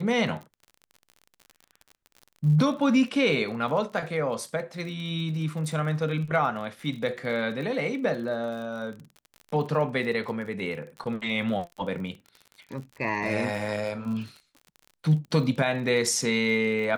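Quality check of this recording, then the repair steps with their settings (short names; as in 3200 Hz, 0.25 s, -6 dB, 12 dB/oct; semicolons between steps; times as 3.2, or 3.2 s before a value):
crackle 39/s -36 dBFS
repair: de-click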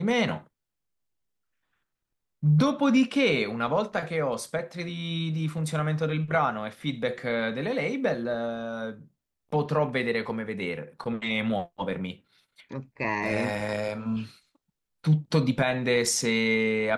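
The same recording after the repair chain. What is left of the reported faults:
none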